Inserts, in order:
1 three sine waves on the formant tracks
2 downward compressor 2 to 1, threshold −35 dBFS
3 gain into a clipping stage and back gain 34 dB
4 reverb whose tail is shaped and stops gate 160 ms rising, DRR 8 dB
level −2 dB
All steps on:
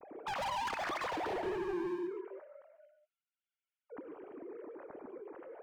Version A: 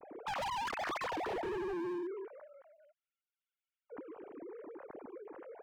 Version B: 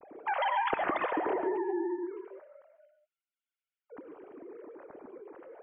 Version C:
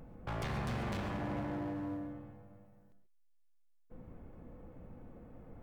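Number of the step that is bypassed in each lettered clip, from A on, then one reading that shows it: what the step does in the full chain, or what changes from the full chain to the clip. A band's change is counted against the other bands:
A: 4, change in momentary loudness spread −1 LU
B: 3, distortion level −7 dB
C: 1, 125 Hz band +22.5 dB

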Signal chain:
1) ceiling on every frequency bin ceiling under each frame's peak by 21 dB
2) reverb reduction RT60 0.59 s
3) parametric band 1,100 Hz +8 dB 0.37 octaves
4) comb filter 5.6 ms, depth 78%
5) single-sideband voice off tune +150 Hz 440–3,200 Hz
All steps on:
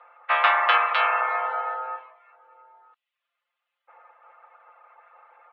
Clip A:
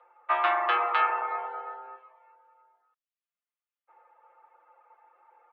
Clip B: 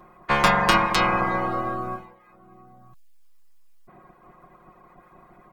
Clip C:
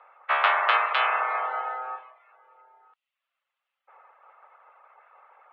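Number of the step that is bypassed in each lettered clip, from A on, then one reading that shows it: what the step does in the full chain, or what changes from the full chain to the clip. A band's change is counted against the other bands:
1, 500 Hz band +5.5 dB
5, 500 Hz band +5.0 dB
4, change in integrated loudness −2.0 LU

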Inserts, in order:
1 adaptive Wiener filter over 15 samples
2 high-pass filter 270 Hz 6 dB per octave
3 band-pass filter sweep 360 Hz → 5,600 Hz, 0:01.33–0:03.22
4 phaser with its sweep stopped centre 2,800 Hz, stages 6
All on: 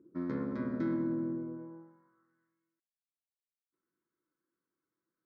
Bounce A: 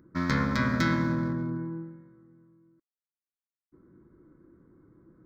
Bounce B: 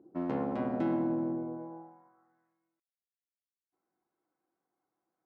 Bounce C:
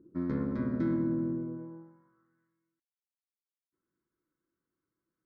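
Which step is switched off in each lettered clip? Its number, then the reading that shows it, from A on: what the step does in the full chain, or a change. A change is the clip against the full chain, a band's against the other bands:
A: 3, 500 Hz band −12.0 dB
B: 4, 1 kHz band +9.0 dB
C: 2, change in integrated loudness +3.5 LU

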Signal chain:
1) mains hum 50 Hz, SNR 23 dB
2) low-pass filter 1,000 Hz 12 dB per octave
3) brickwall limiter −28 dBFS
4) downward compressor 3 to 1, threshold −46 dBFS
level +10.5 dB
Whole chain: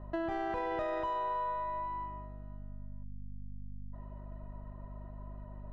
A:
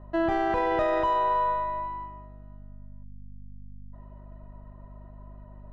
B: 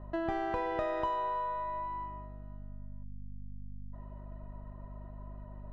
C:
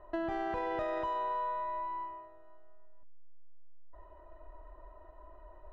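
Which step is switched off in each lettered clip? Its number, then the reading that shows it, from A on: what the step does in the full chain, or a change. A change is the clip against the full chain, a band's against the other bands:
4, 125 Hz band −7.5 dB
3, change in crest factor +2.5 dB
1, change in momentary loudness spread +4 LU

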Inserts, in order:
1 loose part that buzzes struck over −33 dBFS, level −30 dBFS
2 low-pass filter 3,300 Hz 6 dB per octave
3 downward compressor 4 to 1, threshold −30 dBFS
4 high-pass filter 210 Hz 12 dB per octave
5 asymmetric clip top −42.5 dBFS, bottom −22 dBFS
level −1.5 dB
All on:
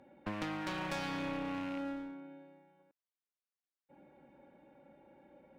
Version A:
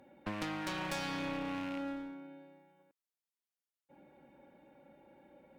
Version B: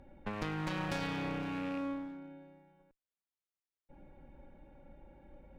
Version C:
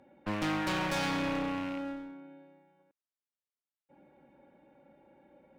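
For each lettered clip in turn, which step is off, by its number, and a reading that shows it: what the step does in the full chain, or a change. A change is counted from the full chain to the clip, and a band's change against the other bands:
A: 2, 8 kHz band +4.5 dB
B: 4, 125 Hz band +5.5 dB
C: 3, average gain reduction 2.5 dB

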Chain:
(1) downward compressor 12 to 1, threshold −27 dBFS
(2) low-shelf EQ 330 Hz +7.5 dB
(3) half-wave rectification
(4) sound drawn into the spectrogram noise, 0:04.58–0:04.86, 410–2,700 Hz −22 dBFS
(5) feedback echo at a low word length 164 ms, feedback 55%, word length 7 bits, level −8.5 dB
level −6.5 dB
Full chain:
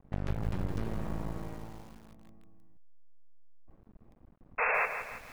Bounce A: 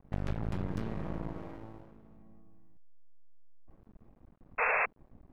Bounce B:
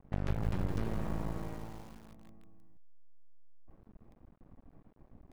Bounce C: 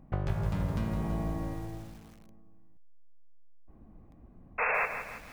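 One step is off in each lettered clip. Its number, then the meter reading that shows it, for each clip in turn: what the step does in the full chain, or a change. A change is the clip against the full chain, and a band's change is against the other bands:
5, 4 kHz band −2.5 dB
4, 2 kHz band −17.0 dB
3, distortion level 0 dB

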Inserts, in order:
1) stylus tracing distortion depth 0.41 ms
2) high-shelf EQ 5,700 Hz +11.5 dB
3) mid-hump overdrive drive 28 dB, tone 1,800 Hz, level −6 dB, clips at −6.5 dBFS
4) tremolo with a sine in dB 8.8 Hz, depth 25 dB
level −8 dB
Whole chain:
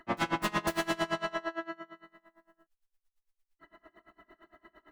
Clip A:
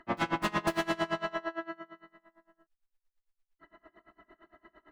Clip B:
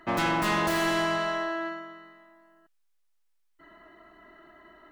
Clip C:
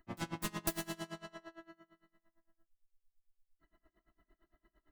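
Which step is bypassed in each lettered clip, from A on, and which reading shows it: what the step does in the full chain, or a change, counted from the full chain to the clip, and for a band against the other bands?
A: 2, 8 kHz band −4.5 dB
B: 4, change in crest factor −5.0 dB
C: 3, change in crest factor +13.5 dB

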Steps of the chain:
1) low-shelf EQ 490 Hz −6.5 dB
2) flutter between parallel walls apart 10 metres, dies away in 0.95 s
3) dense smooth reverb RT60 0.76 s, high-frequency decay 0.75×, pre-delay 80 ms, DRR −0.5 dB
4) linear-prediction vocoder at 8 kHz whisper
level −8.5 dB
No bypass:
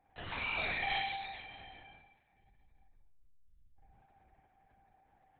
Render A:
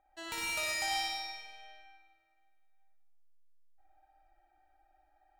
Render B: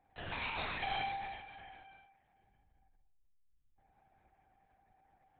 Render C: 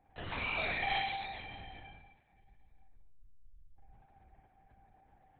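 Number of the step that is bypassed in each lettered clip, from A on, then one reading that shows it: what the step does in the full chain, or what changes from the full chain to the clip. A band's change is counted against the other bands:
4, 4 kHz band +3.5 dB
2, 2 kHz band −5.0 dB
1, 4 kHz band −3.0 dB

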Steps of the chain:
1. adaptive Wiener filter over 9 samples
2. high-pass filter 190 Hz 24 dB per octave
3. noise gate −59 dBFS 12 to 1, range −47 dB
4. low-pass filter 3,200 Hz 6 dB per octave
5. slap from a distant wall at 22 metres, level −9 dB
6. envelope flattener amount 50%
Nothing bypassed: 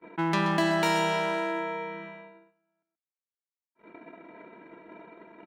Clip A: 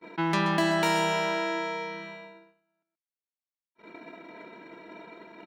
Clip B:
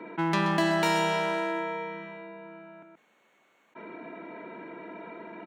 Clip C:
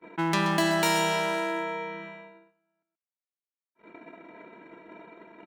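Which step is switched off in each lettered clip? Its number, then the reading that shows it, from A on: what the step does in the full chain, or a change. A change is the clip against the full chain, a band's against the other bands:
1, 8 kHz band +2.0 dB
3, change in momentary loudness spread +5 LU
4, 8 kHz band +7.0 dB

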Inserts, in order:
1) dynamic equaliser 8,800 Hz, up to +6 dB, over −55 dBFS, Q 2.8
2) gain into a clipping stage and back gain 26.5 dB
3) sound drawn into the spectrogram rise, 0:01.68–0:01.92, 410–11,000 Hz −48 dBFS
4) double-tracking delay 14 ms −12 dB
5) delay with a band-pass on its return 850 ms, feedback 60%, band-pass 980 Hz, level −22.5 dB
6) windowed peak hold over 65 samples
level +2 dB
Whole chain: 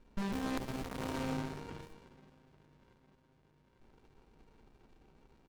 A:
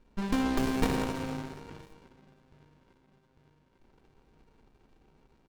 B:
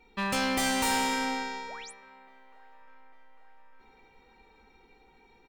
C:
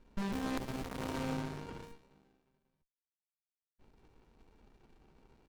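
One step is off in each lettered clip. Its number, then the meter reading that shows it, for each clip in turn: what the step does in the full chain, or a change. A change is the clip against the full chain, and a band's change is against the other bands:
2, distortion level −10 dB
6, change in crest factor −7.5 dB
5, change in momentary loudness spread −3 LU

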